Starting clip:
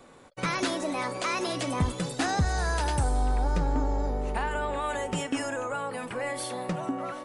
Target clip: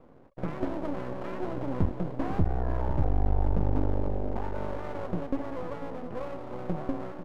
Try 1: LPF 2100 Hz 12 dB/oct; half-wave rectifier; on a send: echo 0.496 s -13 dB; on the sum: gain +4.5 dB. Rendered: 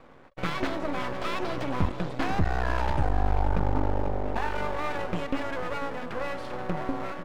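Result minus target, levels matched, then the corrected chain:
2000 Hz band +10.5 dB
LPF 540 Hz 12 dB/oct; half-wave rectifier; on a send: echo 0.496 s -13 dB; on the sum: gain +4.5 dB

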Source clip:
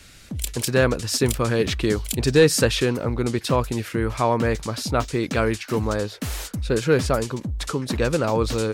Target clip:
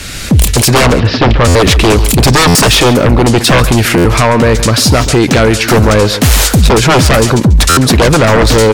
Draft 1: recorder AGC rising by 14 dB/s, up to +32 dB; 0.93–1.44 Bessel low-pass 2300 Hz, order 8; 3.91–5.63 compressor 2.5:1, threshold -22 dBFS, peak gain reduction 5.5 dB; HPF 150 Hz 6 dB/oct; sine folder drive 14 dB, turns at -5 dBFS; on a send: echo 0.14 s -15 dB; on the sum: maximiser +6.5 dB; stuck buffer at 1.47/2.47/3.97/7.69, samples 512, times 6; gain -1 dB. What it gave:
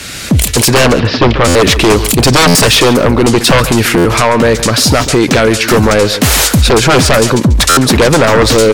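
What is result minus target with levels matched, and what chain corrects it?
125 Hz band -3.0 dB
recorder AGC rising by 14 dB/s, up to +32 dB; 0.93–1.44 Bessel low-pass 2300 Hz, order 8; 3.91–5.63 compressor 2.5:1, threshold -22 dBFS, peak gain reduction 5.5 dB; sine folder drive 14 dB, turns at -5 dBFS; on a send: echo 0.14 s -15 dB; on the sum: maximiser +6.5 dB; stuck buffer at 1.47/2.47/3.97/7.69, samples 512, times 6; gain -1 dB

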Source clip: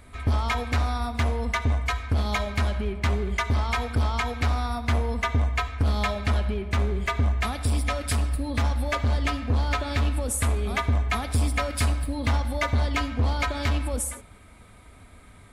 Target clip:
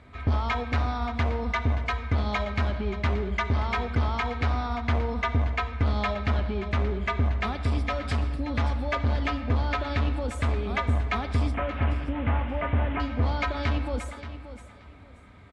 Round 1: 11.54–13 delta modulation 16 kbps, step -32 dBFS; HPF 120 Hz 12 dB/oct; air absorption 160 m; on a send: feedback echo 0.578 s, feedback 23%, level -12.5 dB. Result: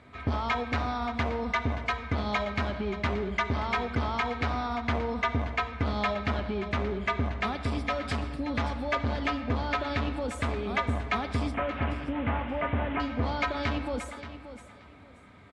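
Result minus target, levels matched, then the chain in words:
125 Hz band -4.0 dB
11.54–13 delta modulation 16 kbps, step -32 dBFS; HPF 59 Hz 12 dB/oct; air absorption 160 m; on a send: feedback echo 0.578 s, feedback 23%, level -12.5 dB

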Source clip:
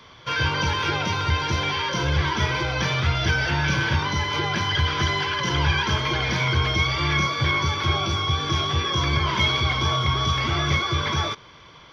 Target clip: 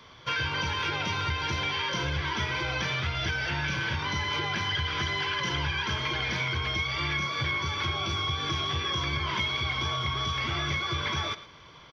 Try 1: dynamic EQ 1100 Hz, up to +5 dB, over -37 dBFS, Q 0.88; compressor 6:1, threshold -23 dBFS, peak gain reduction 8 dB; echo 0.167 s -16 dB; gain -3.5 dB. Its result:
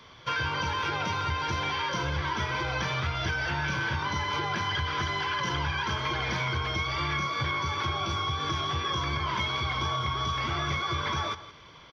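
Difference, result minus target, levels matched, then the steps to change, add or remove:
echo 55 ms late; 1000 Hz band +4.0 dB
change: dynamic EQ 2400 Hz, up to +5 dB, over -37 dBFS, Q 0.88; change: echo 0.112 s -16 dB

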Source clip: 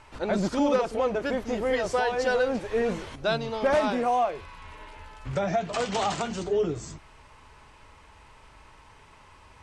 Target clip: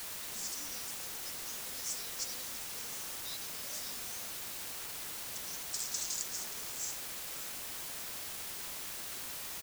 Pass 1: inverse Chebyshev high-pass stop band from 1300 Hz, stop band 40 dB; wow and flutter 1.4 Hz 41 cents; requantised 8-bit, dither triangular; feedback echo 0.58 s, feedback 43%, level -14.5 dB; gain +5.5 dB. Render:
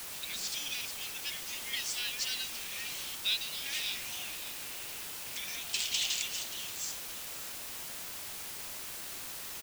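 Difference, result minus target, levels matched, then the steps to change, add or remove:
2000 Hz band +4.0 dB
change: inverse Chebyshev high-pass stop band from 2800 Hz, stop band 40 dB

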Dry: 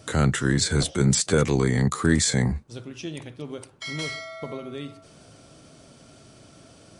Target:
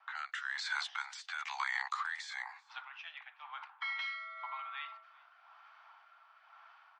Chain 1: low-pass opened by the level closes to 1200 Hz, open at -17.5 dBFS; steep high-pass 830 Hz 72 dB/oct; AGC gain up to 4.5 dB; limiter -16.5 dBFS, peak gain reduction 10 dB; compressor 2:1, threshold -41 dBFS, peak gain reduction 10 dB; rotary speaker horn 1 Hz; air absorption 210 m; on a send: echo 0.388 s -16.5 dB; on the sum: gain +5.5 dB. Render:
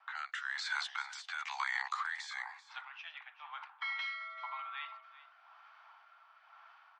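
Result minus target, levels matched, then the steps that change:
echo-to-direct +9 dB
change: echo 0.388 s -25.5 dB

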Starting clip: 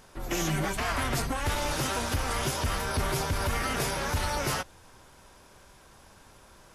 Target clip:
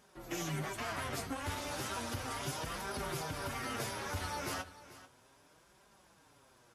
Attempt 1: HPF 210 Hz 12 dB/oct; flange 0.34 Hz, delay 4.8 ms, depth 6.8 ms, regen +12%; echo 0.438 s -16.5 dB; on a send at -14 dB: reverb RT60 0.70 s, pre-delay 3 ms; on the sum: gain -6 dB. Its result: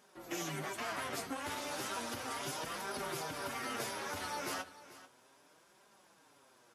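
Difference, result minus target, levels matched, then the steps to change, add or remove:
125 Hz band -7.5 dB
change: HPF 74 Hz 12 dB/oct

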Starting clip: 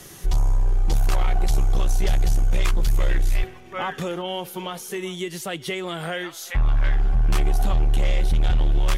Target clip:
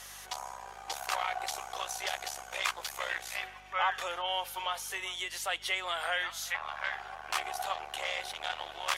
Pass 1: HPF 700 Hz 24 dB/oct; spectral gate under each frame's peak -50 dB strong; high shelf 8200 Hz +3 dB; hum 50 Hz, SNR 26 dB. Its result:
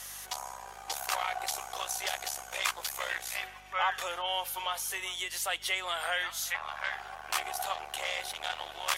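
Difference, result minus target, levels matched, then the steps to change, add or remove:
8000 Hz band +3.0 dB
change: high shelf 8200 Hz -7 dB

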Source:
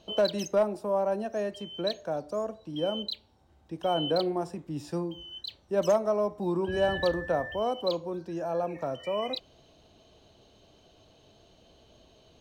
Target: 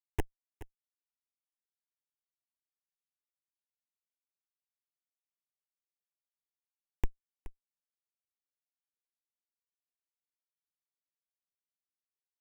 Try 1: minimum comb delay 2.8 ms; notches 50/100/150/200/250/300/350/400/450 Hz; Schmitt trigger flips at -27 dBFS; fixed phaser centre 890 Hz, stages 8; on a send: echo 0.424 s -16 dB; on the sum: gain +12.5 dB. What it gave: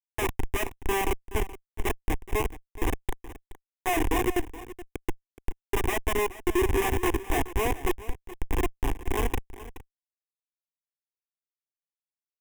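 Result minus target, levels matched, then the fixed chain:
Schmitt trigger: distortion -21 dB
minimum comb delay 2.8 ms; notches 50/100/150/200/250/300/350/400/450 Hz; Schmitt trigger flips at -18.5 dBFS; fixed phaser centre 890 Hz, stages 8; on a send: echo 0.424 s -16 dB; on the sum: gain +12.5 dB

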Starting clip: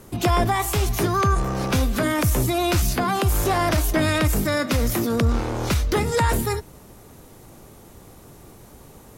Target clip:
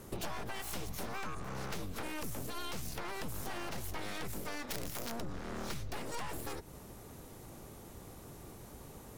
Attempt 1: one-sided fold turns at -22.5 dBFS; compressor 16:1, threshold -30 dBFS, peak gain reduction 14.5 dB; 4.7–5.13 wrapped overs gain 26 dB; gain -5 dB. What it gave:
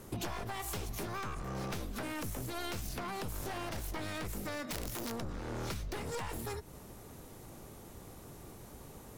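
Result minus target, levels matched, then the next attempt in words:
one-sided fold: distortion -13 dB
one-sided fold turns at -32 dBFS; compressor 16:1, threshold -30 dBFS, peak gain reduction 14.5 dB; 4.7–5.13 wrapped overs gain 26 dB; gain -5 dB

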